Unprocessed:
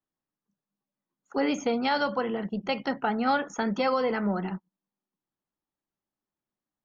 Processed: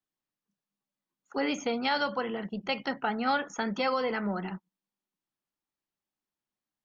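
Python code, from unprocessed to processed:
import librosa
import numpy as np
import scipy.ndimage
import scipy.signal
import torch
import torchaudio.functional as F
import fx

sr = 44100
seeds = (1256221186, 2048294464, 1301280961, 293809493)

y = fx.peak_eq(x, sr, hz=3100.0, db=5.5, octaves=2.7)
y = F.gain(torch.from_numpy(y), -4.5).numpy()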